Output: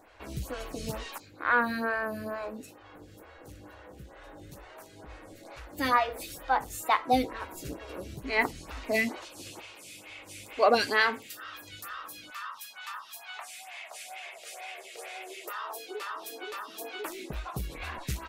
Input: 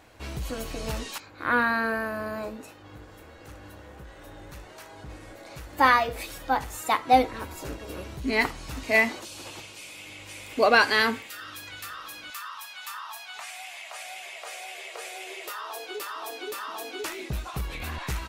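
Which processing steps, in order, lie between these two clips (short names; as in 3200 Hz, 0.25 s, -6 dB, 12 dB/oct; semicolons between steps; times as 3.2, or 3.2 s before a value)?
photocell phaser 2.2 Hz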